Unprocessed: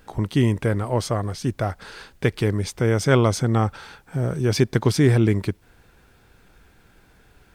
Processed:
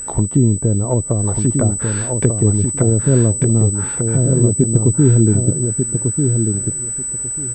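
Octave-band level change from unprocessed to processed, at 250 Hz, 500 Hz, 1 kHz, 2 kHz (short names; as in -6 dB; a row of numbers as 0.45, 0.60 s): +6.5, +3.0, -3.5, -6.0 dB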